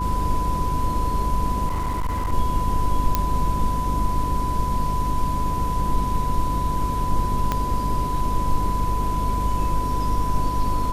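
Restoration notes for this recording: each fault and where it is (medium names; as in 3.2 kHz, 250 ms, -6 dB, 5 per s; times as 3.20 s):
hum 50 Hz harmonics 6 -27 dBFS
whine 1 kHz -25 dBFS
1.67–2.33 s: clipped -20.5 dBFS
3.15 s: pop -5 dBFS
7.52 s: pop -9 dBFS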